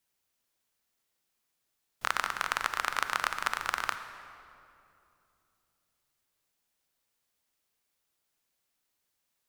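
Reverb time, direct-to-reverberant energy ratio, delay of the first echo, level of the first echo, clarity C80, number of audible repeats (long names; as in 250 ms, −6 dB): 2.7 s, 9.0 dB, no echo audible, no echo audible, 10.5 dB, no echo audible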